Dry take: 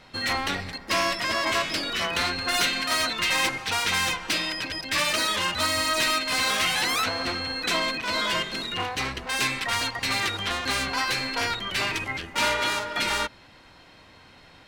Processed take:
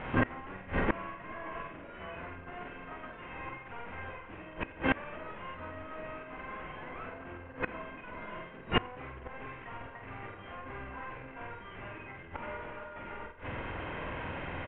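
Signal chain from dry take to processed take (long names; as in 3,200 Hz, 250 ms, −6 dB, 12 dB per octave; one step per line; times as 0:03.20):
variable-slope delta modulation 16 kbit/s
double-tracking delay 48 ms −3.5 dB
flutter between parallel walls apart 7.9 metres, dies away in 0.33 s
gate with flip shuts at −24 dBFS, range −26 dB
high-frequency loss of the air 460 metres
level +13 dB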